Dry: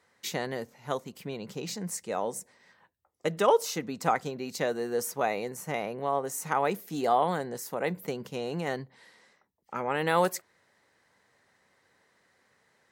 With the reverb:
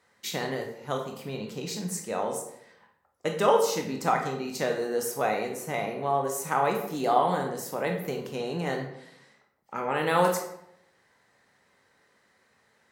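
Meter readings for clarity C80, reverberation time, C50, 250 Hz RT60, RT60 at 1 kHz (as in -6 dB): 9.0 dB, 0.75 s, 6.0 dB, 0.80 s, 0.70 s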